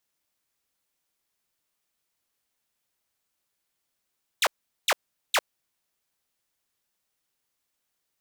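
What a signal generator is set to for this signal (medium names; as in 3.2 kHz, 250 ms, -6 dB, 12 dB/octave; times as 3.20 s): burst of laser zaps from 4.3 kHz, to 450 Hz, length 0.05 s saw, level -16 dB, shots 3, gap 0.41 s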